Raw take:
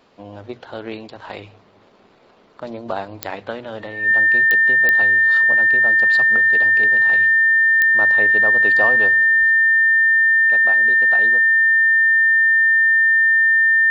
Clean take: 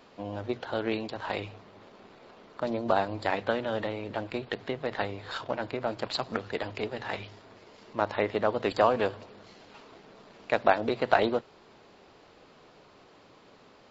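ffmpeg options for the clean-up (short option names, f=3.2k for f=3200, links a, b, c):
-filter_complex "[0:a]adeclick=t=4,bandreject=f=1.8k:w=30,asplit=3[a][b][c];[a]afade=t=out:st=9.39:d=0.02[d];[b]highpass=f=140:w=0.5412,highpass=f=140:w=1.3066,afade=t=in:st=9.39:d=0.02,afade=t=out:st=9.51:d=0.02[e];[c]afade=t=in:st=9.51:d=0.02[f];[d][e][f]amix=inputs=3:normalize=0,asetnsamples=n=441:p=0,asendcmd='9.5 volume volume 8.5dB',volume=0dB"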